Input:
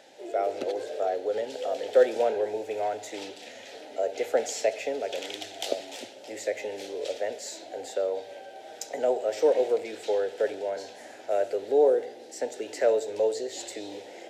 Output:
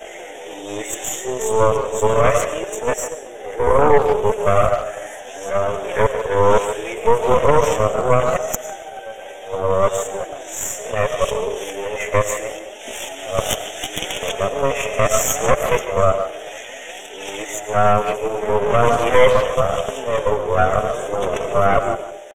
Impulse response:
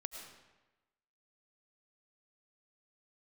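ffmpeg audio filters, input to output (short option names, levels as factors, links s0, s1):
-filter_complex "[0:a]areverse,atempo=0.64,asplit=2[s0][s1];[s1]equalizer=f=3200:w=0.7:g=-6[s2];[1:a]atrim=start_sample=2205[s3];[s2][s3]afir=irnorm=-1:irlink=0,volume=2[s4];[s0][s4]amix=inputs=2:normalize=0,flanger=delay=4.5:depth=5.3:regen=29:speed=0.7:shape=sinusoidal,highpass=f=1000:p=1,aeval=exprs='0.299*(cos(1*acos(clip(val(0)/0.299,-1,1)))-cos(1*PI/2))+0.0841*(cos(6*acos(clip(val(0)/0.299,-1,1)))-cos(6*PI/2))':c=same,asuperstop=centerf=4500:order=8:qfactor=2,asplit=2[s5][s6];[s6]adelay=150,highpass=300,lowpass=3400,asoftclip=type=hard:threshold=0.126,volume=0.282[s7];[s5][s7]amix=inputs=2:normalize=0,alimiter=level_in=4.47:limit=0.891:release=50:level=0:latency=1,volume=0.891"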